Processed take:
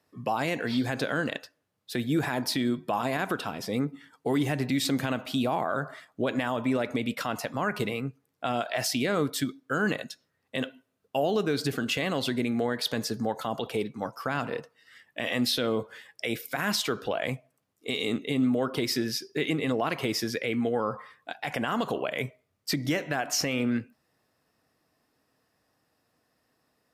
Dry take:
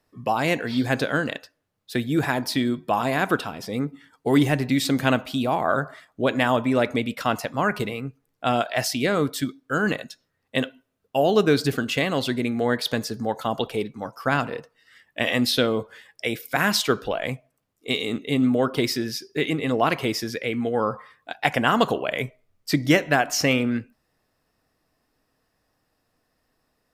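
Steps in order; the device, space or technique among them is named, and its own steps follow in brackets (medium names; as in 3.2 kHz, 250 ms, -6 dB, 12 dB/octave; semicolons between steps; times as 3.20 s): podcast mastering chain (high-pass 92 Hz; compression 2:1, threshold -23 dBFS, peak gain reduction 6.5 dB; peak limiter -16.5 dBFS, peak gain reduction 10 dB; MP3 96 kbps 32 kHz)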